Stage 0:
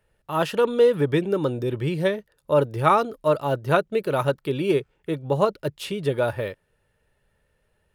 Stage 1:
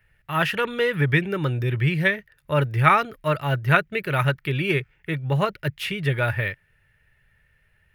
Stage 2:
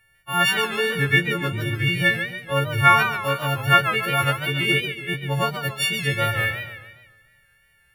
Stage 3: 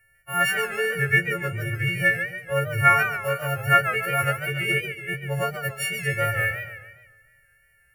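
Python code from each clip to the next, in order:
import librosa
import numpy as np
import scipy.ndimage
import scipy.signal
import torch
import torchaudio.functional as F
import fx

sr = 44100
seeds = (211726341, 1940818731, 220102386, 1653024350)

y1 = fx.graphic_eq_10(x, sr, hz=(125, 250, 500, 1000, 2000, 4000, 8000), db=(4, -9, -10, -7, 11, -5, -9))
y1 = y1 * 10.0 ** (5.5 / 20.0)
y2 = fx.freq_snap(y1, sr, grid_st=4)
y2 = fx.echo_warbled(y2, sr, ms=142, feedback_pct=47, rate_hz=2.8, cents=158, wet_db=-9)
y2 = y2 * 10.0 ** (-2.0 / 20.0)
y3 = fx.fixed_phaser(y2, sr, hz=990.0, stages=6)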